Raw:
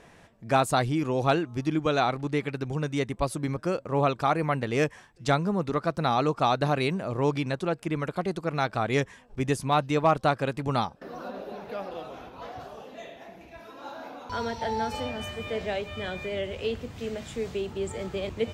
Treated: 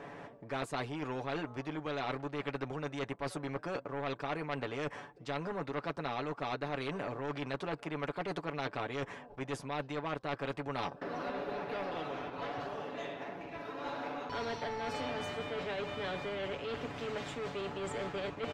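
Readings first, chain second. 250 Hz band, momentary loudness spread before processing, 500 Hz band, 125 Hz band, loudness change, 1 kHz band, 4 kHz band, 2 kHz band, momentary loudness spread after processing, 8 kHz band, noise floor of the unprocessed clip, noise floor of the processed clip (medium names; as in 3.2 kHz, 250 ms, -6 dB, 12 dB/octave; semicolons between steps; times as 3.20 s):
-10.5 dB, 16 LU, -9.5 dB, -13.0 dB, -10.5 dB, -10.5 dB, -8.0 dB, -6.5 dB, 4 LU, -12.0 dB, -54 dBFS, -53 dBFS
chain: in parallel at -4 dB: crossover distortion -46.5 dBFS; on the sum: comb 7 ms, depth 68%; reverse; compression 16:1, threshold -25 dBFS, peak gain reduction 15.5 dB; reverse; band-pass filter 450 Hz, Q 0.83; saturation -23 dBFS, distortion -20 dB; spectrum-flattening compressor 2:1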